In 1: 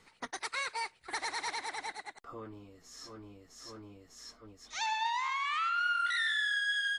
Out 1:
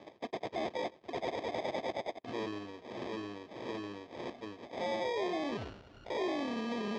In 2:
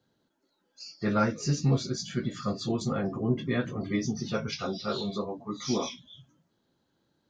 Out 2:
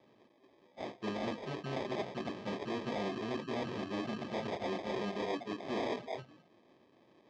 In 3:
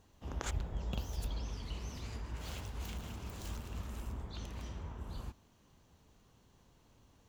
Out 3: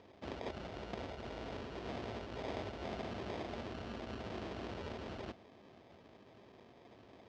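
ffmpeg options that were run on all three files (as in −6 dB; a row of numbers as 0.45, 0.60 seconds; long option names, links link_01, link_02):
-af "areverse,acompressor=threshold=-42dB:ratio=6,areverse,acrusher=samples=31:mix=1:aa=0.000001,aeval=exprs='0.0106*(abs(mod(val(0)/0.0106+3,4)-2)-1)':channel_layout=same,highpass=150,equalizer=frequency=160:width_type=q:width=4:gain=-7,equalizer=frequency=380:width_type=q:width=4:gain=4,equalizer=frequency=660:width_type=q:width=4:gain=6,equalizer=frequency=3000:width_type=q:width=4:gain=3,lowpass=frequency=5200:width=0.5412,lowpass=frequency=5200:width=1.3066,volume=8.5dB"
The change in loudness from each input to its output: −5.5, −8.0, −1.5 LU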